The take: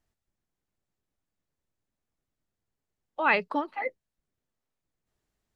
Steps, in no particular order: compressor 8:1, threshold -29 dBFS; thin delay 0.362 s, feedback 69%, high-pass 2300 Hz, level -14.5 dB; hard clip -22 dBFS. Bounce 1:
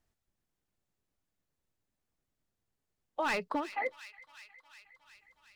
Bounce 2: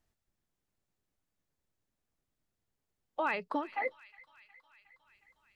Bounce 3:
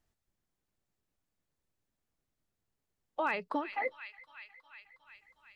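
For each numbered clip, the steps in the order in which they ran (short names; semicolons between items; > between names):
hard clip > thin delay > compressor; compressor > hard clip > thin delay; thin delay > compressor > hard clip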